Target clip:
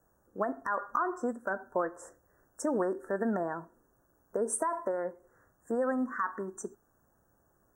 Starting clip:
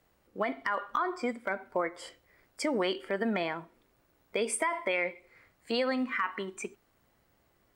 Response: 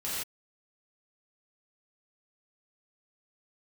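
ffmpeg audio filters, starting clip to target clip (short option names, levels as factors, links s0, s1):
-af "asuperstop=centerf=3200:order=20:qfactor=0.8"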